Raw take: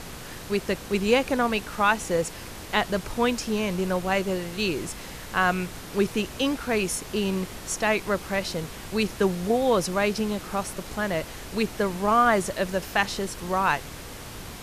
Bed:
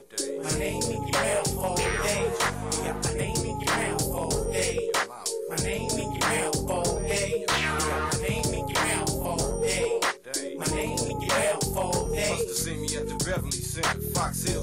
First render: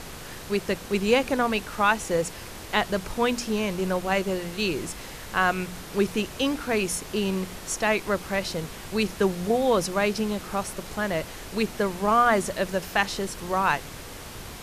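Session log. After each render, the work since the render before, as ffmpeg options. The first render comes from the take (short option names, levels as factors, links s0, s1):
-af "bandreject=f=60:t=h:w=4,bandreject=f=120:t=h:w=4,bandreject=f=180:t=h:w=4,bandreject=f=240:t=h:w=4,bandreject=f=300:t=h:w=4"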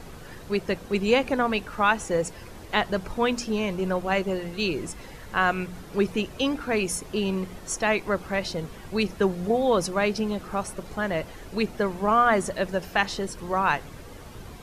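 -af "afftdn=nr=10:nf=-40"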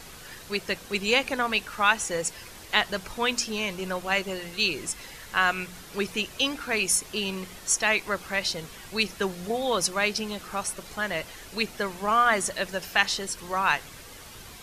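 -af "tiltshelf=f=1300:g=-7.5"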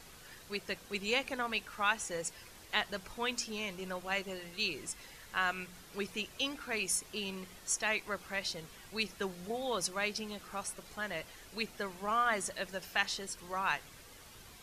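-af "volume=0.335"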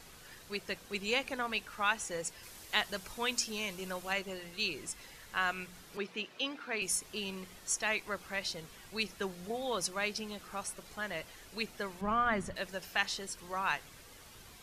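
-filter_complex "[0:a]asettb=1/sr,asplit=3[s0][s1][s2];[s0]atrim=end=2.434[s3];[s1]atrim=start=2.43:end=4.13,asetpts=PTS-STARTPTS,afade=t=in:d=0.004:c=qsin,afade=t=out:st=1.696:d=0.004:c=qsin,highshelf=f=4500:g=7[s4];[s2]atrim=start=4.126[s5];[s3][s4]acrossfade=d=0.004:c1=hsin:c2=qsin[s6];[s6][s5]acrossfade=d=0.004:c1=qsin:c2=hsin,asettb=1/sr,asplit=3[s7][s8][s9];[s7]atrim=end=5.974[s10];[s8]atrim=start=5.97:end=6.82,asetpts=PTS-STARTPTS,afade=t=in:d=0.004:c=qsin,afade=t=out:st=0.846:d=0.004:c=qsin,acrossover=split=160 4800:gain=0.0631 1 0.178[s11][s12][s13];[s11][s12][s13]amix=inputs=3:normalize=0[s14];[s9]atrim=start=6.816[s15];[s10][s14]acrossfade=d=0.004:c1=hsin:c2=qsin[s16];[s16][s15]acrossfade=d=0.004:c1=qsin:c2=hsin,asettb=1/sr,asplit=3[s17][s18][s19];[s17]atrim=end=12.014[s20];[s18]atrim=start=12.01:end=12.56,asetpts=PTS-STARTPTS,afade=t=in:d=0.004:c=qsin,afade=t=out:st=0.546:d=0.004:c=qsin,bass=f=250:g=12,treble=f=4000:g=-12[s21];[s19]atrim=start=12.556[s22];[s20][s21]acrossfade=d=0.004:c1=hsin:c2=qsin[s23];[s23][s22]acrossfade=d=0.004:c1=qsin:c2=hsin"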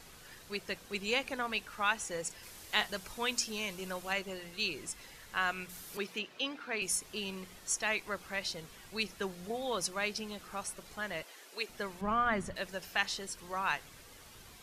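-filter_complex "[0:a]asettb=1/sr,asplit=3[s0][s1][s2];[s0]atrim=end=2.274[s3];[s1]atrim=start=2.27:end=2.88,asetpts=PTS-STARTPTS,afade=t=in:d=0.004:c=qsin,afade=t=out:st=0.606:d=0.004:c=qsin,asplit=2[s4][s5];[s5]adelay=33,volume=0.299[s6];[s4][s6]amix=inputs=2:normalize=0,atrim=end_sample=26901[s7];[s2]atrim=start=2.876[s8];[s3][s7]acrossfade=d=0.004:c1=hsin:c2=qsin[s9];[s9][s8]acrossfade=d=0.004:c1=qsin:c2=hsin,asettb=1/sr,asplit=3[s10][s11][s12];[s10]atrim=end=5.694[s13];[s11]atrim=start=5.69:end=6.19,asetpts=PTS-STARTPTS,afade=t=in:d=0.004:c=qsin,afade=t=out:st=0.496:d=0.004:c=qsin,aemphasis=mode=production:type=50kf[s14];[s12]atrim=start=6.186[s15];[s13][s14]acrossfade=d=0.004:c1=hsin:c2=qsin[s16];[s16][s15]acrossfade=d=0.004:c1=qsin:c2=hsin,asettb=1/sr,asplit=3[s17][s18][s19];[s17]atrim=end=11.234[s20];[s18]atrim=start=11.23:end=11.69,asetpts=PTS-STARTPTS,afade=t=in:d=0.004:c=qsin,afade=t=out:st=0.456:d=0.004:c=qsin,highpass=f=320:w=0.5412,highpass=f=320:w=1.3066[s21];[s19]atrim=start=11.686[s22];[s20][s21]acrossfade=d=0.004:c1=hsin:c2=qsin[s23];[s23][s22]acrossfade=d=0.004:c1=qsin:c2=hsin"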